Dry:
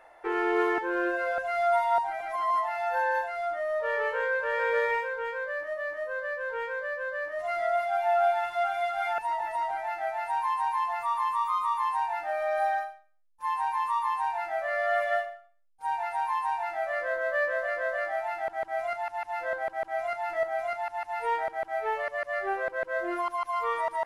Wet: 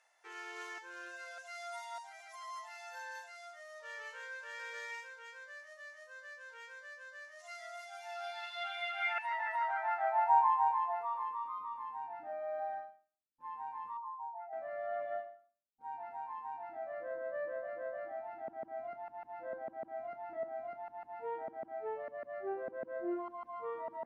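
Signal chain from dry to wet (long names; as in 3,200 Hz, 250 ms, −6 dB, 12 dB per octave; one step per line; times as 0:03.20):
0:13.97–0:14.53: expanding power law on the bin magnitudes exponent 2.2
band-pass filter sweep 6,400 Hz → 240 Hz, 0:07.97–0:11.80
level +4.5 dB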